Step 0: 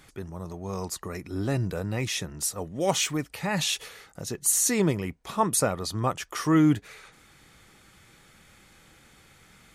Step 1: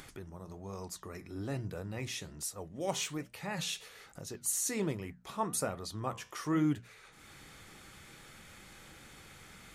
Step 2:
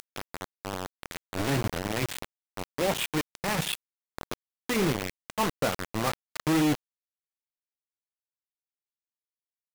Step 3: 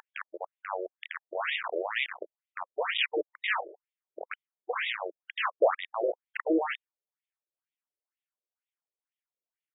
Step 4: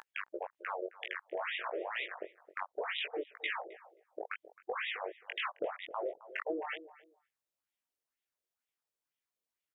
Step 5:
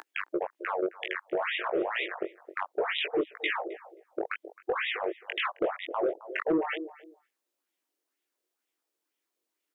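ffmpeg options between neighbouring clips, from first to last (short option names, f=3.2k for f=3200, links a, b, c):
-af "bandreject=f=60:t=h:w=6,bandreject=f=120:t=h:w=6,bandreject=f=180:t=h:w=6,bandreject=f=240:t=h:w=6,flanger=delay=7.3:depth=9.6:regen=-76:speed=1.2:shape=sinusoidal,acompressor=mode=upward:threshold=-36dB:ratio=2.5,volume=-5.5dB"
-af "aresample=8000,volume=27dB,asoftclip=hard,volume=-27dB,aresample=44100,acrusher=bits=5:mix=0:aa=0.000001,volume=8.5dB"
-af "afftfilt=real='re*between(b*sr/1024,440*pow(2700/440,0.5+0.5*sin(2*PI*2.1*pts/sr))/1.41,440*pow(2700/440,0.5+0.5*sin(2*PI*2.1*pts/sr))*1.41)':imag='im*between(b*sr/1024,440*pow(2700/440,0.5+0.5*sin(2*PI*2.1*pts/sr))/1.41,440*pow(2700/440,0.5+0.5*sin(2*PI*2.1*pts/sr))*1.41)':win_size=1024:overlap=0.75,volume=7dB"
-filter_complex "[0:a]acompressor=threshold=-36dB:ratio=10,flanger=delay=16.5:depth=5.2:speed=2.9,asplit=2[a][b];[b]adelay=265,lowpass=f=890:p=1,volume=-14dB,asplit=2[c][d];[d]adelay=265,lowpass=f=890:p=1,volume=0.19[e];[a][c][e]amix=inputs=3:normalize=0,volume=5dB"
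-filter_complex "[0:a]highpass=f=320:t=q:w=3.6,acrossover=split=1600[a][b];[a]asoftclip=type=tanh:threshold=-25.5dB[c];[c][b]amix=inputs=2:normalize=0,volume=6dB"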